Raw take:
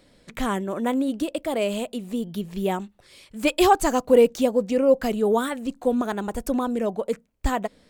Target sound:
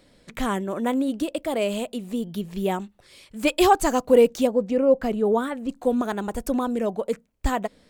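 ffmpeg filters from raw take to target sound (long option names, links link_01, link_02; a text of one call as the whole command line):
ffmpeg -i in.wav -filter_complex "[0:a]asettb=1/sr,asplit=3[link_01][link_02][link_03];[link_01]atrim=end=4.474[link_04];[link_02]atrim=start=4.47:end=5.69,asetpts=PTS-STARTPTS,afade=type=in:duration=0.004:curve=qsin,afade=type=out:start_time=1.216:duration=0.004:curve=qsin,highshelf=frequency=2800:gain=-10.5[link_05];[link_03]atrim=start=5.686[link_06];[link_04][link_05]acrossfade=duration=0.004:curve1=hsin:curve2=qsin[link_07];[link_07][link_06]acrossfade=duration=0.004:curve1=qsin:curve2=hsin" out.wav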